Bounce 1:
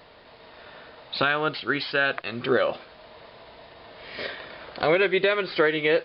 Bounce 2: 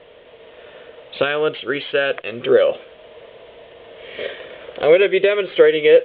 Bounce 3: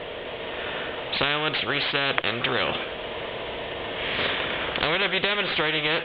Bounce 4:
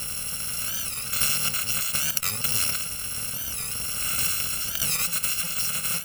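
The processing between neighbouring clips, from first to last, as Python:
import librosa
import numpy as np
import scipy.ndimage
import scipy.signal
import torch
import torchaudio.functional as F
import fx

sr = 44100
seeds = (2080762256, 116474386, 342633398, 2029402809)

y1 = fx.curve_eq(x, sr, hz=(230.0, 330.0, 490.0, 800.0, 1400.0, 3300.0, 4900.0), db=(0, 3, 13, -2, -1, 7, -29))
y2 = fx.spectral_comp(y1, sr, ratio=4.0)
y3 = fx.bit_reversed(y2, sr, seeds[0], block=128)
y3 = fx.rider(y3, sr, range_db=4, speed_s=2.0)
y3 = fx.record_warp(y3, sr, rpm=45.0, depth_cents=160.0)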